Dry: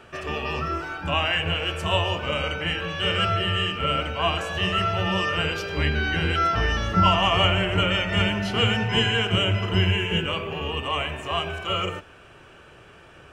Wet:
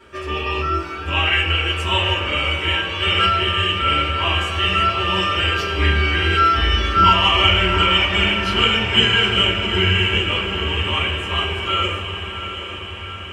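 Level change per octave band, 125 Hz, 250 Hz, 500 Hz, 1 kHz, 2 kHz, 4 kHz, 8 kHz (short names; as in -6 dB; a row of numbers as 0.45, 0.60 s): +3.0, +2.0, +2.0, +6.5, +7.0, +8.0, +3.5 dB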